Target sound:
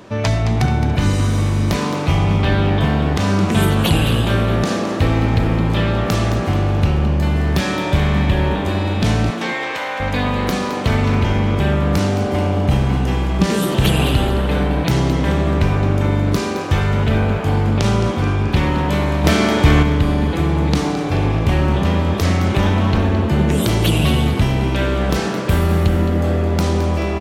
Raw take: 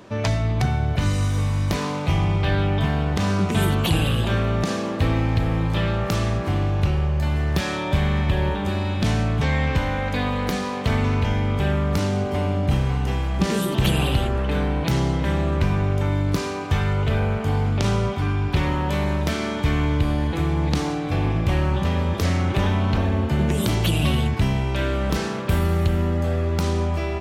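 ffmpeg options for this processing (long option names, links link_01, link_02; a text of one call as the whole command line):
ffmpeg -i in.wav -filter_complex "[0:a]asettb=1/sr,asplit=3[link_01][link_02][link_03];[link_01]atrim=end=9.304[link_04];[link_02]atrim=start=9.3:end=10,asetpts=PTS-STARTPTS,afade=type=in:duration=0.004:curve=qsin,afade=type=out:start_time=0.696:duration=0.004:curve=qsin,highpass=600[link_05];[link_03]atrim=start=9.996[link_06];[link_04][link_05]acrossfade=duration=0.004:curve1=hsin:curve2=qsin[link_07];[link_07][link_06]acrossfade=duration=0.004:curve1=qsin:curve2=hsin,asplit=6[link_08][link_09][link_10][link_11][link_12][link_13];[link_09]adelay=216,afreqshift=120,volume=-10.5dB[link_14];[link_10]adelay=432,afreqshift=240,volume=-17.6dB[link_15];[link_11]adelay=648,afreqshift=360,volume=-24.8dB[link_16];[link_12]adelay=864,afreqshift=480,volume=-31.9dB[link_17];[link_13]adelay=1080,afreqshift=600,volume=-39dB[link_18];[link_08][link_14][link_15][link_16][link_17][link_18]amix=inputs=6:normalize=0,asettb=1/sr,asplit=3[link_19][link_20][link_21];[link_19]atrim=end=19.244[link_22];[link_20]atrim=start=19.24:end=19.83,asetpts=PTS-STARTPTS,afade=type=in:duration=0.004:curve=qsin,afade=type=out:start_time=0.586:duration=0.004:curve=qsin,acontrast=25[link_23];[link_21]atrim=start=19.826[link_24];[link_22][link_23]acrossfade=duration=0.004:curve1=hsin:curve2=qsin[link_25];[link_25][link_24]acrossfade=duration=0.004:curve1=qsin:curve2=hsin,volume=4.5dB" out.wav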